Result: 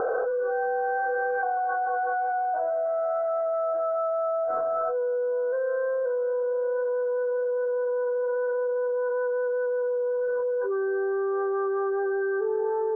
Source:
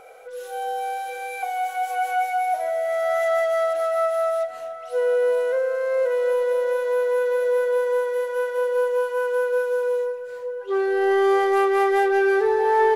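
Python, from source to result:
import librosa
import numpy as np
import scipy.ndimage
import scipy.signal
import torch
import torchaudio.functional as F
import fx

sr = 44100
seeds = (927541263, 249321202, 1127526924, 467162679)

y = scipy.signal.sosfilt(scipy.signal.cheby1(6, 9, 1600.0, 'lowpass', fs=sr, output='sos'), x)
y = fx.env_flatten(y, sr, amount_pct=100)
y = y * 10.0 ** (-8.5 / 20.0)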